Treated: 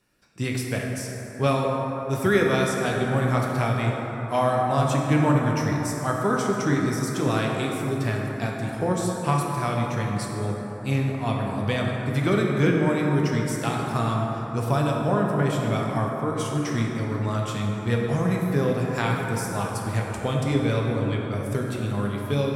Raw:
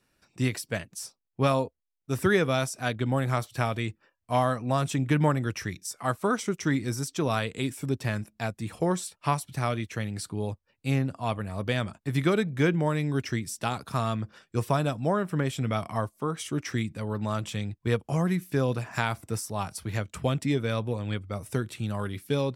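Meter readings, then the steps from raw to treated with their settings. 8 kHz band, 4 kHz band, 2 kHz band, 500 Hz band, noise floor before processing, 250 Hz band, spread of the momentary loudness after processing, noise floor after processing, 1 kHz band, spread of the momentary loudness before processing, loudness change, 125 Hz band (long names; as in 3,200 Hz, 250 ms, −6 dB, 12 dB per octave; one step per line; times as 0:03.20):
+2.0 dB, +2.0 dB, +3.5 dB, +4.5 dB, −77 dBFS, +4.5 dB, 6 LU, −33 dBFS, +4.5 dB, 8 LU, +4.5 dB, +4.5 dB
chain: dense smooth reverb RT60 4.2 s, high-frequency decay 0.35×, DRR −1.5 dB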